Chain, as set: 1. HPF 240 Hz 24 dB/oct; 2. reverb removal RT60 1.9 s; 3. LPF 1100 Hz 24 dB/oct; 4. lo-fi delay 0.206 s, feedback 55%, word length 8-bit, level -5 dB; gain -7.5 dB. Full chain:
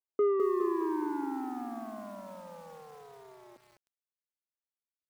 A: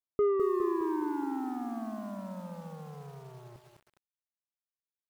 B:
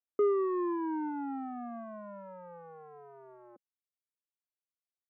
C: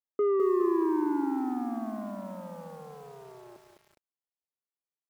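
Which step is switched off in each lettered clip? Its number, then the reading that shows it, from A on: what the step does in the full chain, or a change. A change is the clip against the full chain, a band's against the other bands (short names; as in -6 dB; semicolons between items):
1, 125 Hz band +14.0 dB; 4, loudness change -1.5 LU; 2, 125 Hz band +7.5 dB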